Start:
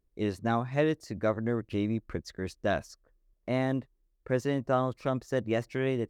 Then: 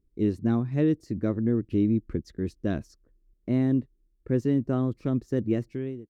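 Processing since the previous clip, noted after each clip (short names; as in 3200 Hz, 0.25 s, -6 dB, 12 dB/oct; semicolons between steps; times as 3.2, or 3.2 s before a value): ending faded out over 0.60 s; resonant low shelf 470 Hz +12 dB, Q 1.5; gain -7 dB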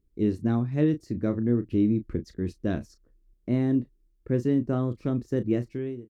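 doubler 33 ms -11 dB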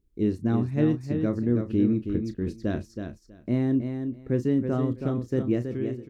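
feedback echo 0.323 s, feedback 16%, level -7 dB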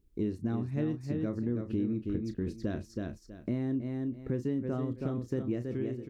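compressor 3:1, threshold -34 dBFS, peak gain reduction 12.5 dB; gain +2 dB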